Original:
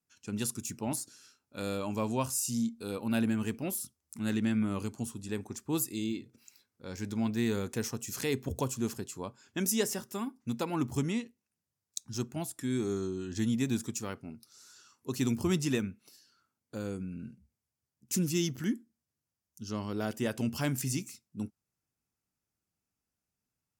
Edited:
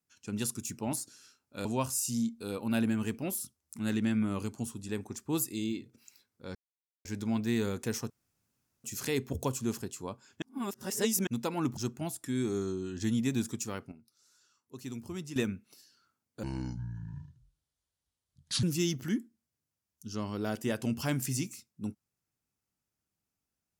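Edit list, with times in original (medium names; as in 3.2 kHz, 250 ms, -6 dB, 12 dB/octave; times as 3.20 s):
1.65–2.05 s: delete
6.95 s: insert silence 0.50 s
8.00 s: insert room tone 0.74 s
9.58–10.43 s: reverse
10.93–12.12 s: delete
14.27–15.71 s: gain -11 dB
16.78–18.19 s: speed 64%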